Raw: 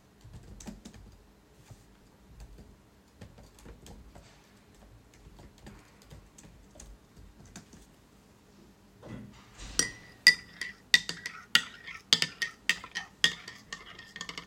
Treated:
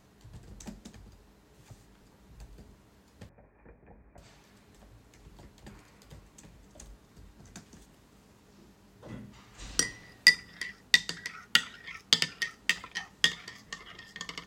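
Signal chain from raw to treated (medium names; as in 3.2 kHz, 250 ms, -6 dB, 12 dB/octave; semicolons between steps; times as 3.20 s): 3.29–4.18 s: rippled Chebyshev low-pass 2.5 kHz, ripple 6 dB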